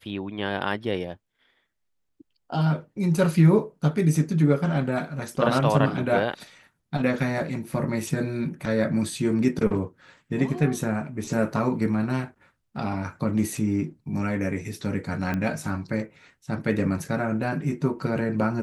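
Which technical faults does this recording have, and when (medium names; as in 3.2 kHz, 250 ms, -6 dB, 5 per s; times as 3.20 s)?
15.34 s: pop -16 dBFS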